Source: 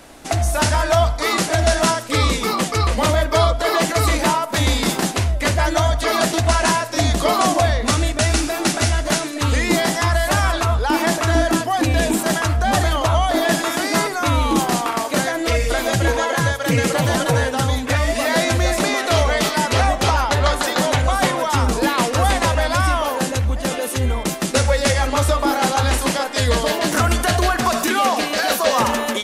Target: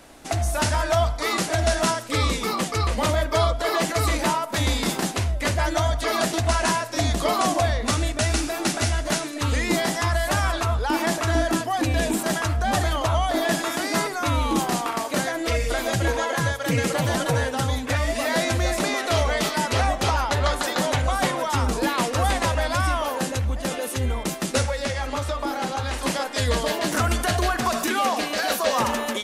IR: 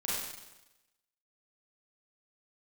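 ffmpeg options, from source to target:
-filter_complex "[0:a]asettb=1/sr,asplit=3[s0][s1][s2];[s0]atrim=end=24.654[s3];[s1]atrim=start=24.65:end=26.03,asetpts=PTS-STARTPTS,afade=t=in:d=0.004:c=qsin,afade=t=out:st=1.376:d=0.004:c=qsin,acrossover=split=510|6300[s4][s5][s6];[s4]acompressor=threshold=0.0708:ratio=4[s7];[s5]acompressor=threshold=0.0794:ratio=4[s8];[s6]acompressor=threshold=0.00794:ratio=4[s9];[s7][s8][s9]amix=inputs=3:normalize=0[s10];[s2]atrim=start=26.026[s11];[s3][s10]acrossfade=d=0.004:c1=hsin:c2=qsin[s12];[s12][s11]acrossfade=d=0.004:c1=qsin:c2=hsin,volume=0.562"

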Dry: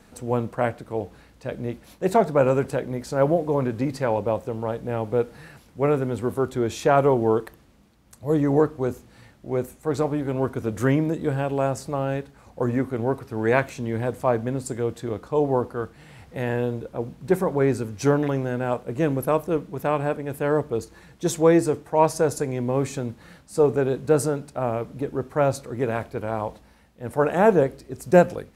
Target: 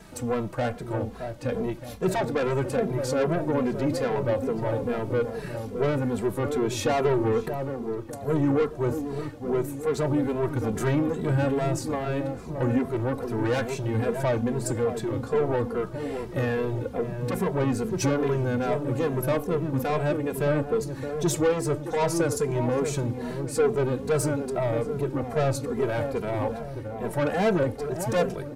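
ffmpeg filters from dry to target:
-filter_complex "[0:a]asplit=2[s0][s1];[s1]acompressor=threshold=0.0282:ratio=6,volume=1.19[s2];[s0][s2]amix=inputs=2:normalize=0,asoftclip=type=tanh:threshold=0.119,asplit=2[s3][s4];[s4]adelay=619,lowpass=f=890:p=1,volume=0.501,asplit=2[s5][s6];[s6]adelay=619,lowpass=f=890:p=1,volume=0.52,asplit=2[s7][s8];[s8]adelay=619,lowpass=f=890:p=1,volume=0.52,asplit=2[s9][s10];[s10]adelay=619,lowpass=f=890:p=1,volume=0.52,asplit=2[s11][s12];[s12]adelay=619,lowpass=f=890:p=1,volume=0.52,asplit=2[s13][s14];[s14]adelay=619,lowpass=f=890:p=1,volume=0.52[s15];[s3][s5][s7][s9][s11][s13][s15]amix=inputs=7:normalize=0,asplit=2[s16][s17];[s17]adelay=2.6,afreqshift=-2.4[s18];[s16][s18]amix=inputs=2:normalize=1,volume=1.19"

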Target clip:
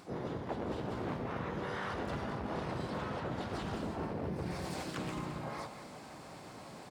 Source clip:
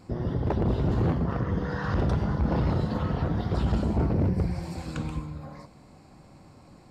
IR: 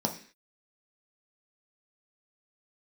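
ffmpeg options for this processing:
-filter_complex "[0:a]highpass=f=480:p=1,bandreject=f=5700:w=9.7,aecho=1:1:218:0.224,asplit=4[s0][s1][s2][s3];[s1]asetrate=35002,aresample=44100,atempo=1.25992,volume=0.631[s4];[s2]asetrate=52444,aresample=44100,atempo=0.840896,volume=0.562[s5];[s3]asetrate=88200,aresample=44100,atempo=0.5,volume=0.316[s6];[s0][s4][s5][s6]amix=inputs=4:normalize=0,areverse,acompressor=threshold=0.00794:ratio=5,areverse,volume=1.88"

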